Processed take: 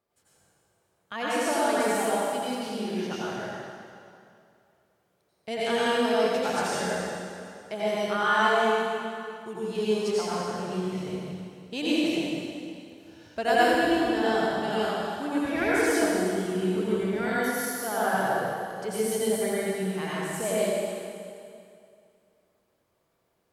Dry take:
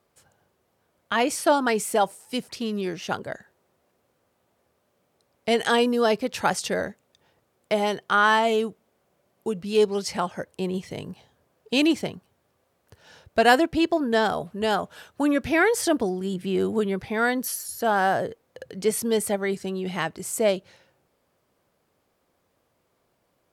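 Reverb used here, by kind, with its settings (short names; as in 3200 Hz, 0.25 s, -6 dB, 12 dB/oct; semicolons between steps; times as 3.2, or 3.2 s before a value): plate-style reverb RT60 2.4 s, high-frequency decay 0.9×, pre-delay 75 ms, DRR -9 dB; gain -12 dB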